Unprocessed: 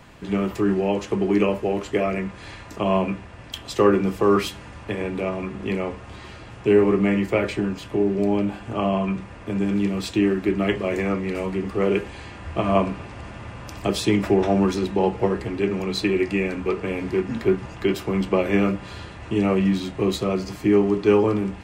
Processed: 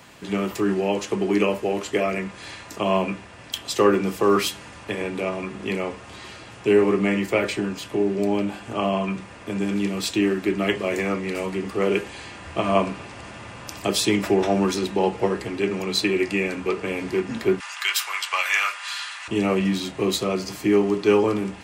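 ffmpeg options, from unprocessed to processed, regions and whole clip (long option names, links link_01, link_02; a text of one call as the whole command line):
ffmpeg -i in.wav -filter_complex "[0:a]asettb=1/sr,asplit=3[link_01][link_02][link_03];[link_01]atrim=end=17.604[link_04];[link_02]atrim=start=17.6:end=19.28,asetpts=PTS-STARTPTS,afade=type=in:duration=0.004:curve=qsin,afade=type=out:start_time=1.676:duration=0.004:curve=qsin,highpass=frequency=1100:width=0.5412,highpass=frequency=1100:width=1.3066,aeval=exprs='0.2*sin(PI/2*1.58*val(0)/0.2)':channel_layout=same[link_05];[link_03]atrim=start=19.276[link_06];[link_04][link_05]acrossfade=duration=0.004:curve1=hsin:curve2=qsin[link_07];[link_07][link_06]acrossfade=duration=0.004:curve1=qsin:curve2=hsin,highpass=frequency=180:poles=1,highshelf=frequency=3400:gain=8.5" out.wav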